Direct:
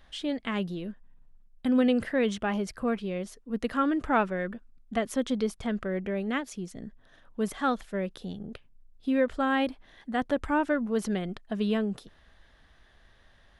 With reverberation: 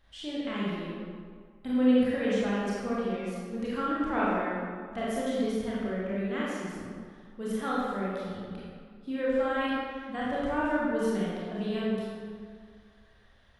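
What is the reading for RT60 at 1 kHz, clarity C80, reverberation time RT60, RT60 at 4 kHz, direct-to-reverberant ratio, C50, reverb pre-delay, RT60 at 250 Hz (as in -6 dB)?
2.0 s, -1.0 dB, 2.0 s, 1.2 s, -7.5 dB, -3.5 dB, 24 ms, 1.9 s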